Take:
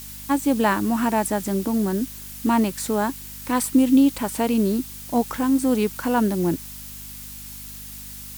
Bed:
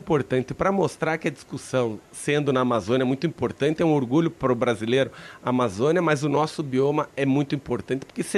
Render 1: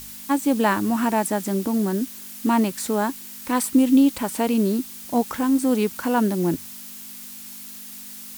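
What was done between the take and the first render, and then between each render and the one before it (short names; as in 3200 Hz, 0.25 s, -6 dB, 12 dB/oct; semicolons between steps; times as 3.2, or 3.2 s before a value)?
de-hum 50 Hz, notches 3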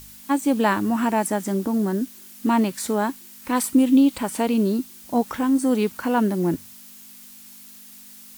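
noise print and reduce 6 dB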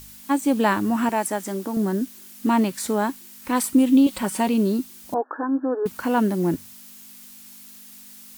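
1.09–1.77 HPF 370 Hz 6 dB/oct; 4.06–4.49 comb 5.4 ms; 5.14–5.86 brick-wall FIR band-pass 260–1800 Hz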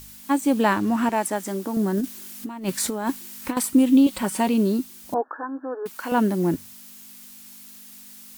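0.63–1.36 backlash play -39 dBFS; 1.97–3.57 negative-ratio compressor -25 dBFS, ratio -0.5; 5.28–6.12 HPF 800 Hz 6 dB/oct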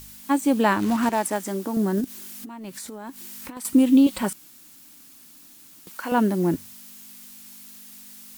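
0.79–1.39 short-mantissa float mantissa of 2-bit; 2.04–3.65 compressor, threshold -34 dBFS; 4.33–5.87 room tone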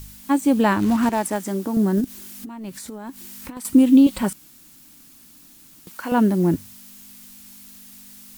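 low shelf 180 Hz +10 dB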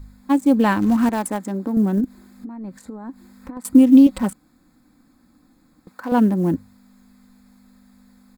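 Wiener smoothing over 15 samples; comb 3.9 ms, depth 35%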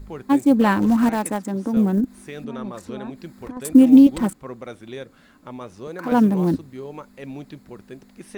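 add bed -13.5 dB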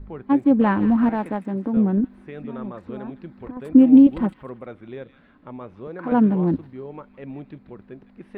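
air absorption 500 m; thin delay 0.159 s, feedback 34%, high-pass 2200 Hz, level -9 dB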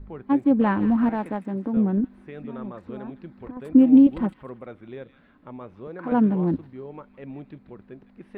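gain -2.5 dB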